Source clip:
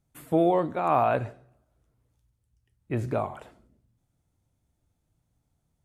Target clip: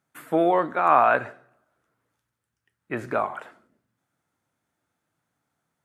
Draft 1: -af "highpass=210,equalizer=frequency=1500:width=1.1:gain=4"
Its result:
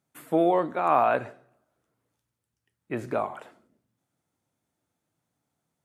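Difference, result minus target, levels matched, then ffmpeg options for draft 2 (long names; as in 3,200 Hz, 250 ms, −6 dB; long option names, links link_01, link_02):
2,000 Hz band −4.0 dB
-af "highpass=210,equalizer=frequency=1500:width=1.1:gain=12.5"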